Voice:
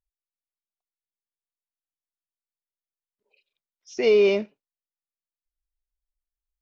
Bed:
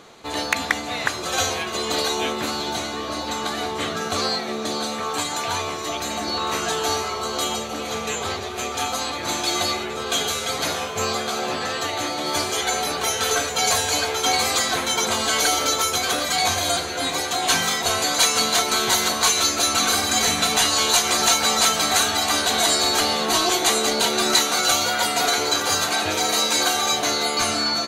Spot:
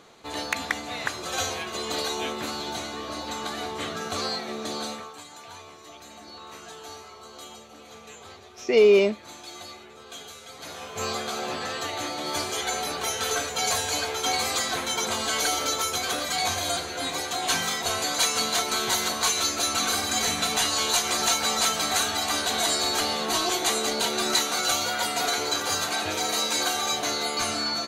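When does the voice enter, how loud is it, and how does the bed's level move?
4.70 s, +1.5 dB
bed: 4.91 s -6 dB
5.15 s -18.5 dB
10.54 s -18.5 dB
11.06 s -5.5 dB

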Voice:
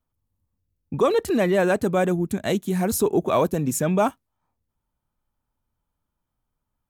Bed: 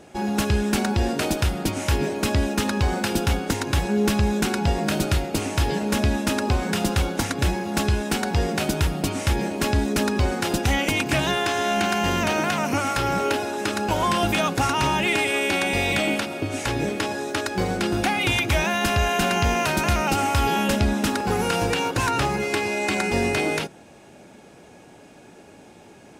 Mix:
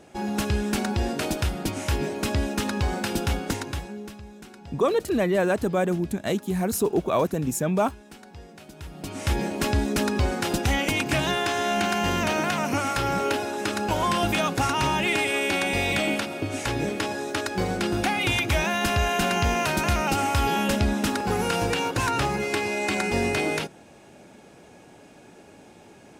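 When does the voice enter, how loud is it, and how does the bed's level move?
3.80 s, -2.5 dB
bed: 3.55 s -3.5 dB
4.20 s -22 dB
8.71 s -22 dB
9.32 s -2 dB

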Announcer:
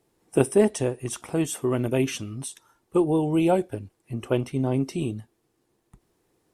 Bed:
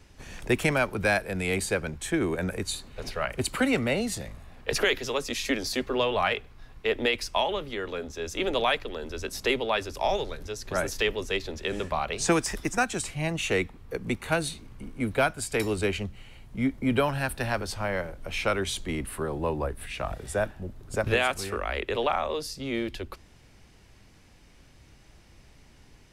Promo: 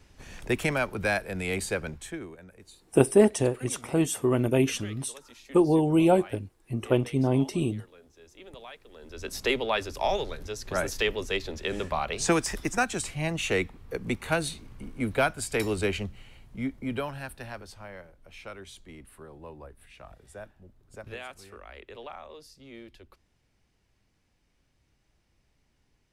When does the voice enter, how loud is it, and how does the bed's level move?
2.60 s, +0.5 dB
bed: 1.92 s -2.5 dB
2.43 s -20.5 dB
8.80 s -20.5 dB
9.31 s -0.5 dB
16.01 s -0.5 dB
18.13 s -16 dB

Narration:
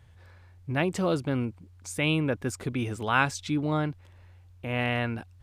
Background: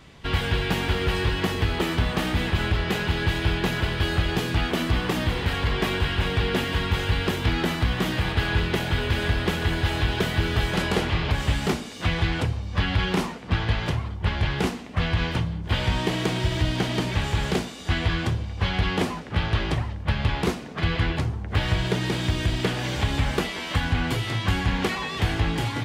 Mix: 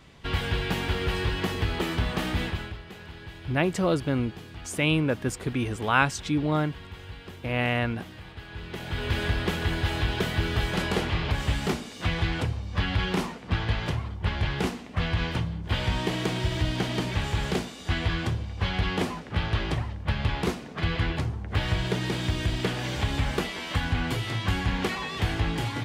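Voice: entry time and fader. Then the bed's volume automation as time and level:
2.80 s, +2.0 dB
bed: 2.44 s -3.5 dB
2.83 s -18.5 dB
8.48 s -18.5 dB
9.11 s -3 dB

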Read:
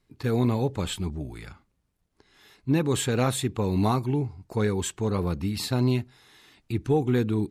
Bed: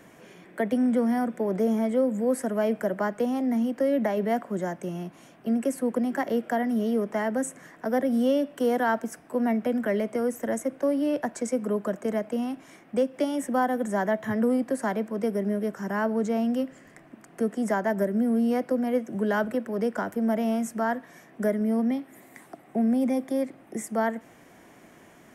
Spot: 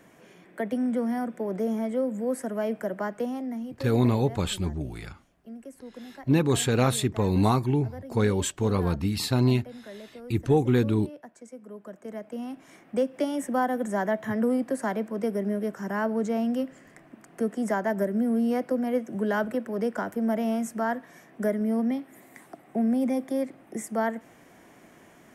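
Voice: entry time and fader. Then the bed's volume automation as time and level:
3.60 s, +1.5 dB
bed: 3.24 s -3.5 dB
4.11 s -17 dB
11.63 s -17 dB
12.79 s -1 dB

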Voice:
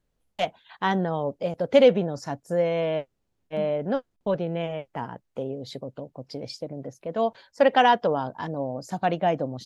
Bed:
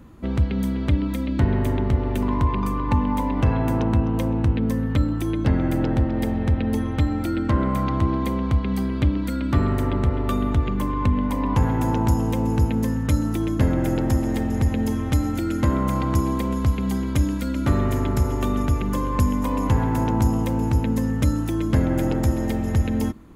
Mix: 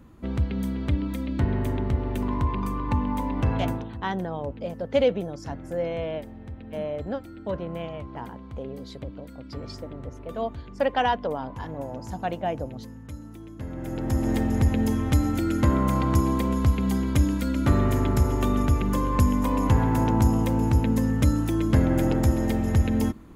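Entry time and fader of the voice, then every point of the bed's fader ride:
3.20 s, -5.0 dB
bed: 3.69 s -4.5 dB
3.92 s -18.5 dB
13.55 s -18.5 dB
14.29 s -0.5 dB

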